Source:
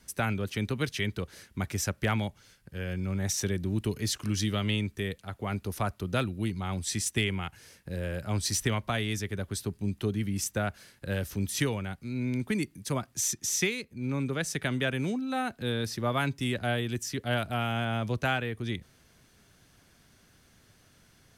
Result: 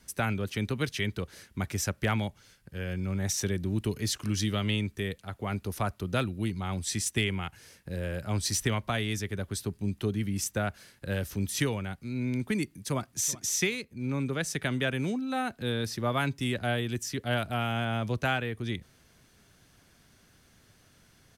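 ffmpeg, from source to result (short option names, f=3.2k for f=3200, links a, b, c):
-filter_complex "[0:a]asplit=2[a][b];[b]afade=t=in:st=12.6:d=0.01,afade=t=out:st=13.13:d=0.01,aecho=0:1:380|760|1140:0.125893|0.0377678|0.0113303[c];[a][c]amix=inputs=2:normalize=0"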